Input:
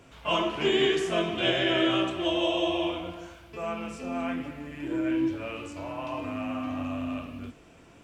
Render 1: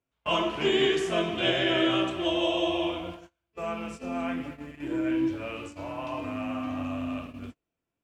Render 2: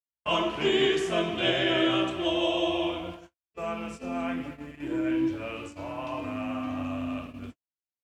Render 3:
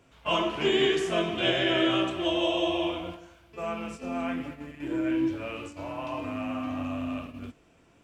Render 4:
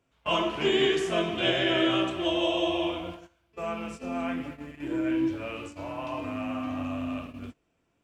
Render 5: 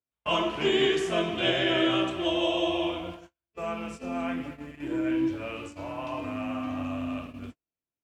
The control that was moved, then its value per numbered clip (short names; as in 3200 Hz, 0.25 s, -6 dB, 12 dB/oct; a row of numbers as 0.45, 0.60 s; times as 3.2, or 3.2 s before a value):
gate, range: -33, -59, -7, -20, -45 dB